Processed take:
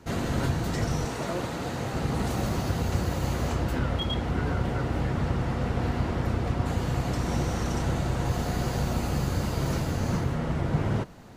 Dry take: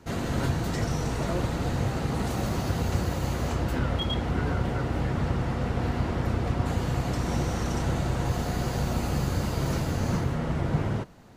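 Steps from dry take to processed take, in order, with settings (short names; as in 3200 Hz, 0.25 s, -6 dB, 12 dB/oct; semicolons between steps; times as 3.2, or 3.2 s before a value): vocal rider 0.5 s; 1.05–1.94 HPF 230 Hz 6 dB/oct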